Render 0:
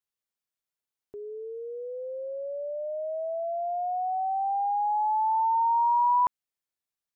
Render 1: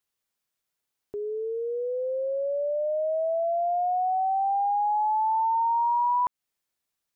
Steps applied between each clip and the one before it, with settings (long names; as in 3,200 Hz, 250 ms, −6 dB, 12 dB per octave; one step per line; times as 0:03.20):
downward compressor 4 to 1, threshold −31 dBFS, peak gain reduction 9 dB
level +7 dB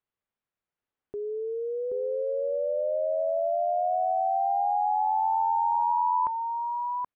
high-frequency loss of the air 480 metres
single-tap delay 777 ms −4.5 dB